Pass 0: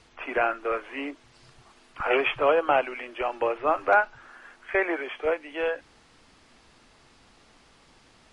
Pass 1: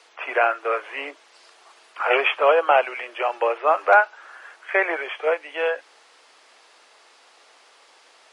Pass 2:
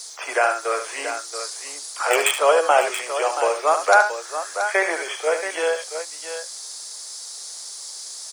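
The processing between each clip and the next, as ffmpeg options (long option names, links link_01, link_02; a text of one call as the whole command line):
ffmpeg -i in.wav -af "highpass=frequency=450:width=0.5412,highpass=frequency=450:width=1.3066,volume=5.5dB" out.wav
ffmpeg -i in.wav -filter_complex "[0:a]acrossover=split=390|3100[link_01][link_02][link_03];[link_03]volume=25.5dB,asoftclip=hard,volume=-25.5dB[link_04];[link_01][link_02][link_04]amix=inputs=3:normalize=0,aexciter=amount=15.3:drive=7:freq=4300,aecho=1:1:73|679:0.355|0.335" out.wav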